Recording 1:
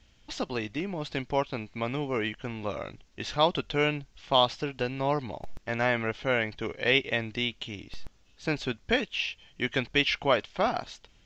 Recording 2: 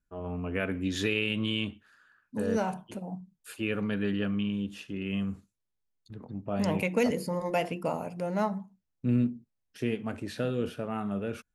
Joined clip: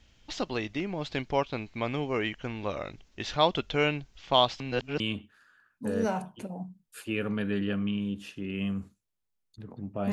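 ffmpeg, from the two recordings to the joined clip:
ffmpeg -i cue0.wav -i cue1.wav -filter_complex "[0:a]apad=whole_dur=10.12,atrim=end=10.12,asplit=2[link_01][link_02];[link_01]atrim=end=4.602[link_03];[link_02]atrim=start=4.598:end=5.002,asetpts=PTS-STARTPTS,areverse[link_04];[1:a]atrim=start=1.518:end=6.64[link_05];[link_03][link_04]acrossfade=duration=0.004:curve1=hsin:curve2=hsin[link_06];[link_06][link_05]acrossfade=duration=0.004:curve1=hsin:curve2=hsin" out.wav

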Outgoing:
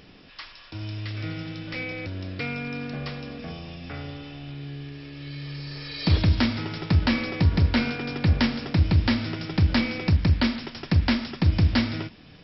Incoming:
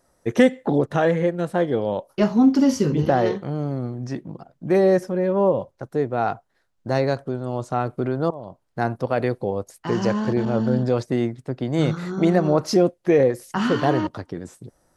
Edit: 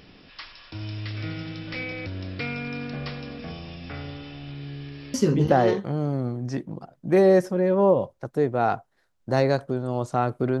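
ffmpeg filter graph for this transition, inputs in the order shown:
ffmpeg -i cue0.wav -i cue1.wav -filter_complex "[0:a]apad=whole_dur=10.6,atrim=end=10.6,atrim=end=5.142[link_01];[1:a]atrim=start=2.718:end=8.18[link_02];[link_01][link_02]acrossfade=duration=0.004:curve1=hsin:curve2=hsin" out.wav

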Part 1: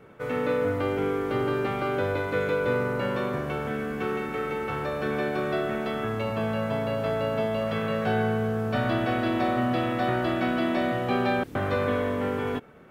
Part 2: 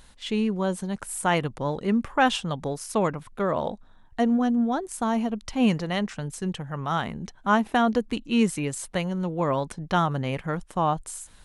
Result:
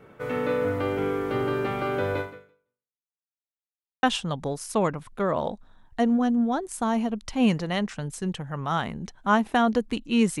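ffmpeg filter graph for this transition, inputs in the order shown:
ffmpeg -i cue0.wav -i cue1.wav -filter_complex "[0:a]apad=whole_dur=10.4,atrim=end=10.4,asplit=2[link_01][link_02];[link_01]atrim=end=3.05,asetpts=PTS-STARTPTS,afade=type=out:start_time=2.2:duration=0.85:curve=exp[link_03];[link_02]atrim=start=3.05:end=4.03,asetpts=PTS-STARTPTS,volume=0[link_04];[1:a]atrim=start=2.23:end=8.6,asetpts=PTS-STARTPTS,afade=type=in:duration=0.004:curve=hsin[link_05];[link_03][link_04][link_05]concat=n=3:v=0:a=1" out.wav

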